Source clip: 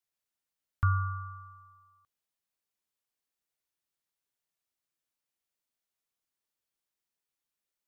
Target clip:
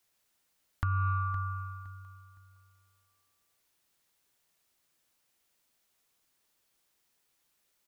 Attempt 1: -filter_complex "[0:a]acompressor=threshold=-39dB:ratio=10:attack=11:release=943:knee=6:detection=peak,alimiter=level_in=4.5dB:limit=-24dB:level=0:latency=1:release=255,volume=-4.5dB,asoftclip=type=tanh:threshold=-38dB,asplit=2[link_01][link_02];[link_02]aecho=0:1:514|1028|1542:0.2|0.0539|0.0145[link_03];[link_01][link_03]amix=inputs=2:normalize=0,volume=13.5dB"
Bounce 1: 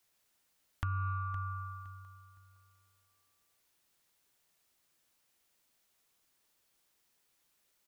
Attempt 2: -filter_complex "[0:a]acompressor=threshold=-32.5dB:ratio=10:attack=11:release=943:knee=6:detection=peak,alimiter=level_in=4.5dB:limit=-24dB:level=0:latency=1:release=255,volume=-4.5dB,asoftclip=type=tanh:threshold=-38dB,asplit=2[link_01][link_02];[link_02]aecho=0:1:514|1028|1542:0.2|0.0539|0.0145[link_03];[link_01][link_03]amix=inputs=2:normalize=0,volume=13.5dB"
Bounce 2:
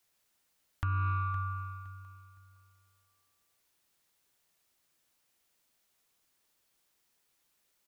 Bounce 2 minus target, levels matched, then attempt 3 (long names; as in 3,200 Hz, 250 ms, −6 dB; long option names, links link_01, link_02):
soft clipping: distortion +8 dB
-filter_complex "[0:a]acompressor=threshold=-32.5dB:ratio=10:attack=11:release=943:knee=6:detection=peak,alimiter=level_in=4.5dB:limit=-24dB:level=0:latency=1:release=255,volume=-4.5dB,asoftclip=type=tanh:threshold=-32dB,asplit=2[link_01][link_02];[link_02]aecho=0:1:514|1028|1542:0.2|0.0539|0.0145[link_03];[link_01][link_03]amix=inputs=2:normalize=0,volume=13.5dB"